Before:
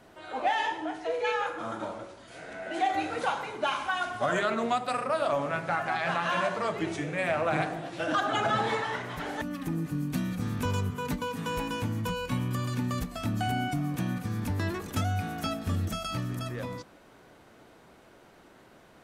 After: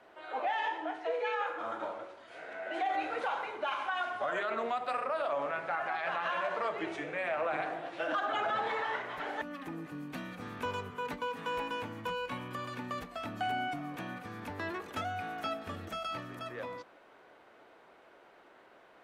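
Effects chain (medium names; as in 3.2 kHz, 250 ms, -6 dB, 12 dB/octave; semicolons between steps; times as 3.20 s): three-band isolator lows -17 dB, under 350 Hz, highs -14 dB, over 3.5 kHz; peak limiter -23.5 dBFS, peak gain reduction 7 dB; trim -1 dB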